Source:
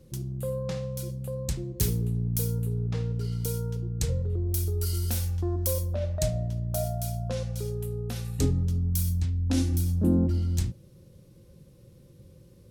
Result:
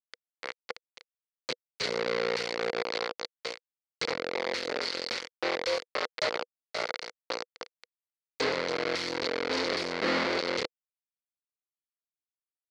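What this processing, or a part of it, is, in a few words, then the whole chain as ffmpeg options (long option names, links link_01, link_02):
hand-held game console: -af "acrusher=bits=3:mix=0:aa=0.000001,highpass=410,equalizer=frequency=490:width_type=q:width=4:gain=10,equalizer=frequency=730:width_type=q:width=4:gain=-3,equalizer=frequency=1400:width_type=q:width=4:gain=3,equalizer=frequency=2100:width_type=q:width=4:gain=9,equalizer=frequency=4400:width_type=q:width=4:gain=9,lowpass=frequency=5100:width=0.5412,lowpass=frequency=5100:width=1.3066,volume=-3dB"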